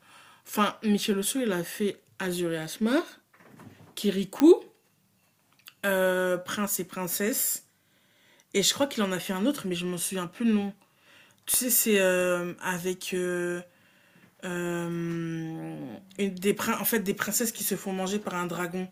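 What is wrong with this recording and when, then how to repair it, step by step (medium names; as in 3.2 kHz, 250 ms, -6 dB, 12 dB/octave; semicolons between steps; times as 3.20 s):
4.40 s: pop -10 dBFS
11.54 s: pop -15 dBFS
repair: de-click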